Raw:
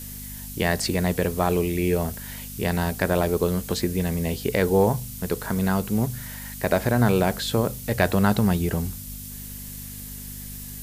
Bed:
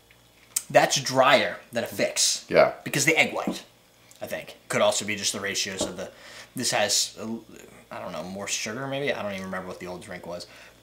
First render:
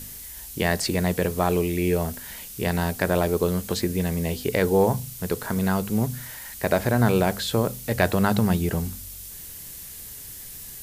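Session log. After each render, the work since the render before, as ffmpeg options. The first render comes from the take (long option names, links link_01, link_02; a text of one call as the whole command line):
ffmpeg -i in.wav -af "bandreject=frequency=50:width_type=h:width=4,bandreject=frequency=100:width_type=h:width=4,bandreject=frequency=150:width_type=h:width=4,bandreject=frequency=200:width_type=h:width=4,bandreject=frequency=250:width_type=h:width=4" out.wav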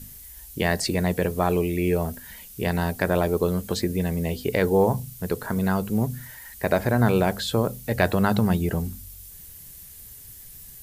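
ffmpeg -i in.wav -af "afftdn=noise_reduction=8:noise_floor=-40" out.wav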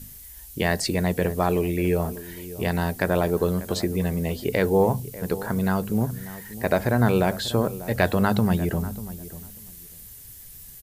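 ffmpeg -i in.wav -filter_complex "[0:a]asplit=2[link_01][link_02];[link_02]adelay=592,lowpass=frequency=1300:poles=1,volume=-15dB,asplit=2[link_03][link_04];[link_04]adelay=592,lowpass=frequency=1300:poles=1,volume=0.18[link_05];[link_01][link_03][link_05]amix=inputs=3:normalize=0" out.wav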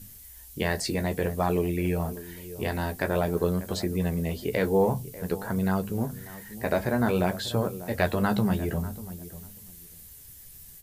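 ffmpeg -i in.wav -af "flanger=delay=10:depth=5.1:regen=-36:speed=0.53:shape=triangular" out.wav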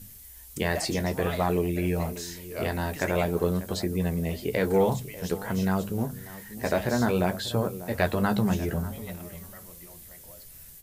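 ffmpeg -i in.wav -i bed.wav -filter_complex "[1:a]volume=-17.5dB[link_01];[0:a][link_01]amix=inputs=2:normalize=0" out.wav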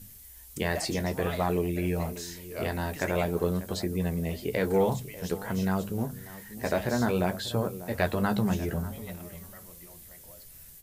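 ffmpeg -i in.wav -af "volume=-2dB" out.wav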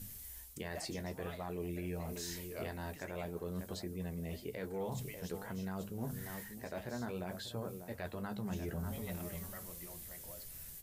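ffmpeg -i in.wav -af "areverse,acompressor=threshold=-37dB:ratio=4,areverse,alimiter=level_in=6dB:limit=-24dB:level=0:latency=1:release=433,volume=-6dB" out.wav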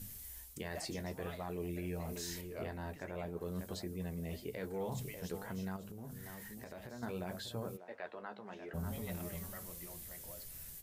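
ffmpeg -i in.wav -filter_complex "[0:a]asettb=1/sr,asplit=3[link_01][link_02][link_03];[link_01]atrim=end=2.414[link_04];[link_02]atrim=start=2.41:end=3.41,asetpts=PTS-STARTPTS,afade=type=in:duration=0.004:curve=qsin,afade=type=out:start_time=0.996:duration=0.004:curve=qsin,highshelf=frequency=3400:gain=-9.5[link_05];[link_03]atrim=start=3.406[link_06];[link_04][link_05]acrossfade=duration=0.004:curve1=hsin:curve2=qsin[link_07];[link_07][link_06]acrossfade=duration=0.004:curve1=qsin:curve2=hsin,asettb=1/sr,asplit=3[link_08][link_09][link_10];[link_08]atrim=end=5.764[link_11];[link_09]atrim=start=5.76:end=7.03,asetpts=PTS-STARTPTS,afade=type=in:duration=0.004:curve=qsin,afade=type=out:start_time=1.266:duration=0.004:curve=qsin,acompressor=threshold=-44dB:ratio=6:attack=3.2:release=140:knee=1:detection=peak[link_12];[link_10]atrim=start=7.026[link_13];[link_11][link_12]acrossfade=duration=0.004:curve1=hsin:curve2=qsin[link_14];[link_14][link_13]acrossfade=duration=0.004:curve1=qsin:curve2=hsin,asplit=3[link_15][link_16][link_17];[link_15]afade=type=out:start_time=7.76:duration=0.02[link_18];[link_16]highpass=450,lowpass=2700,afade=type=in:start_time=7.76:duration=0.02,afade=type=out:start_time=8.73:duration=0.02[link_19];[link_17]afade=type=in:start_time=8.73:duration=0.02[link_20];[link_18][link_19][link_20]amix=inputs=3:normalize=0" out.wav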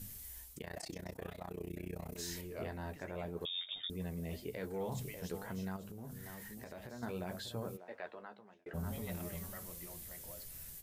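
ffmpeg -i in.wav -filter_complex "[0:a]asplit=3[link_01][link_02][link_03];[link_01]afade=type=out:start_time=0.56:duration=0.02[link_04];[link_02]tremolo=f=31:d=0.947,afade=type=in:start_time=0.56:duration=0.02,afade=type=out:start_time=2.17:duration=0.02[link_05];[link_03]afade=type=in:start_time=2.17:duration=0.02[link_06];[link_04][link_05][link_06]amix=inputs=3:normalize=0,asettb=1/sr,asplit=3[link_07][link_08][link_09];[link_07]atrim=end=3.454[link_10];[link_08]atrim=start=3.45:end=3.9,asetpts=PTS-STARTPTS,afade=type=in:duration=0.004:curve=qsin,afade=type=out:start_time=0.446:duration=0.004:curve=qsin,lowpass=frequency=3200:width_type=q:width=0.5098,lowpass=frequency=3200:width_type=q:width=0.6013,lowpass=frequency=3200:width_type=q:width=0.9,lowpass=frequency=3200:width_type=q:width=2.563,afreqshift=-3800[link_11];[link_09]atrim=start=3.896[link_12];[link_10][link_11]acrossfade=duration=0.004:curve1=hsin:curve2=qsin[link_13];[link_13][link_12]acrossfade=duration=0.004:curve1=qsin:curve2=hsin,asplit=2[link_14][link_15];[link_14]atrim=end=8.66,asetpts=PTS-STARTPTS,afade=type=out:start_time=8.01:duration=0.65[link_16];[link_15]atrim=start=8.66,asetpts=PTS-STARTPTS,afade=type=in:duration=0.004:curve=hsin[link_17];[link_16][link_17]concat=n=2:v=0:a=1" out.wav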